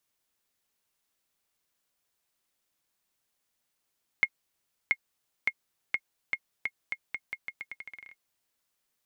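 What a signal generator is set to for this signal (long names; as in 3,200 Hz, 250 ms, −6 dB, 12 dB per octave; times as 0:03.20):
bouncing ball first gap 0.68 s, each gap 0.83, 2,150 Hz, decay 55 ms −11 dBFS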